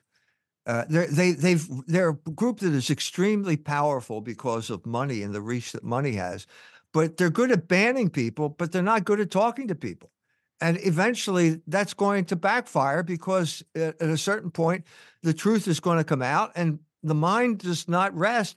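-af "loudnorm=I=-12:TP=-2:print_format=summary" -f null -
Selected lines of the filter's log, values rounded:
Input Integrated:    -25.2 LUFS
Input True Peak:      -7.0 dBTP
Input LRA:             1.9 LU
Input Threshold:     -35.4 LUFS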